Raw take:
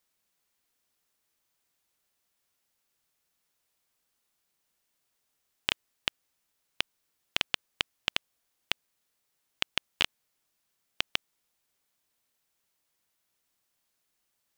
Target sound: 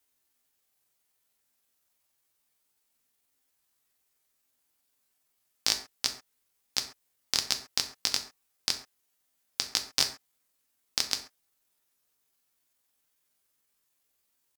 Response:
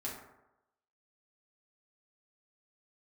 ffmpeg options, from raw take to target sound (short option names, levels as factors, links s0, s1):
-filter_complex "[0:a]asetrate=72056,aresample=44100,atempo=0.612027,asplit=2[s0][s1];[1:a]atrim=start_sample=2205,afade=t=out:st=0.19:d=0.01,atrim=end_sample=8820,highshelf=f=5300:g=11.5[s2];[s1][s2]afir=irnorm=-1:irlink=0,volume=0.708[s3];[s0][s3]amix=inputs=2:normalize=0,volume=0.794"